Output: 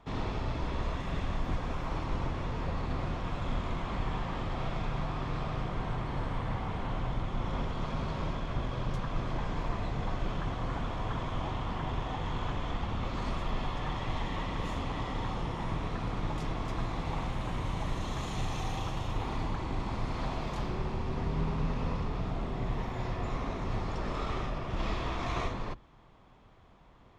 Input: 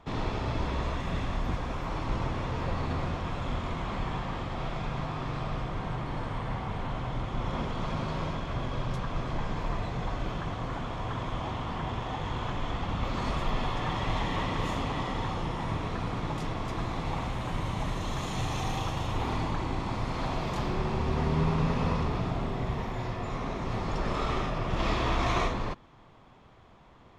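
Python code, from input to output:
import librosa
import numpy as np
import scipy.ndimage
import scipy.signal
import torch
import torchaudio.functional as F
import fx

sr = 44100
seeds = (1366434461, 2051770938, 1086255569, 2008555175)

y = fx.octave_divider(x, sr, octaves=2, level_db=0.0)
y = fx.rider(y, sr, range_db=3, speed_s=0.5)
y = fx.doppler_dist(y, sr, depth_ms=0.15)
y = y * 10.0 ** (-4.0 / 20.0)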